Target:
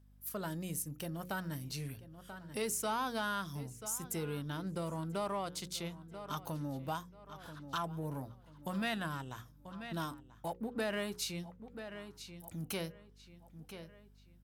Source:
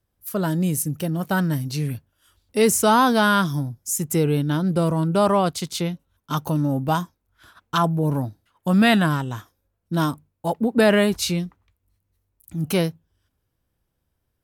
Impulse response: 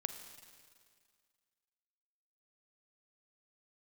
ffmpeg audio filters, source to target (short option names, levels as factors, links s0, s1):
-filter_complex "[0:a]asoftclip=type=tanh:threshold=0.422,lowshelf=f=470:g=-8,asplit=2[s0][s1];[s1]aeval=exprs='sgn(val(0))*max(abs(val(0))-0.0158,0)':c=same,volume=0.335[s2];[s0][s2]amix=inputs=2:normalize=0,equalizer=f=63:w=0.59:g=3.5,bandreject=f=60:t=h:w=6,bandreject=f=120:t=h:w=6,bandreject=f=180:t=h:w=6,bandreject=f=240:t=h:w=6,bandreject=f=300:t=h:w=6,bandreject=f=360:t=h:w=6,bandreject=f=420:t=h:w=6,bandreject=f=480:t=h:w=6,bandreject=f=540:t=h:w=6,asplit=2[s3][s4];[s4]adelay=986,lowpass=f=4700:p=1,volume=0.1,asplit=2[s5][s6];[s6]adelay=986,lowpass=f=4700:p=1,volume=0.34,asplit=2[s7][s8];[s8]adelay=986,lowpass=f=4700:p=1,volume=0.34[s9];[s5][s7][s9]amix=inputs=3:normalize=0[s10];[s3][s10]amix=inputs=2:normalize=0,acompressor=threshold=0.00447:ratio=2,aeval=exprs='val(0)+0.001*(sin(2*PI*50*n/s)+sin(2*PI*2*50*n/s)/2+sin(2*PI*3*50*n/s)/3+sin(2*PI*4*50*n/s)/4+sin(2*PI*5*50*n/s)/5)':c=same,volume=0.891"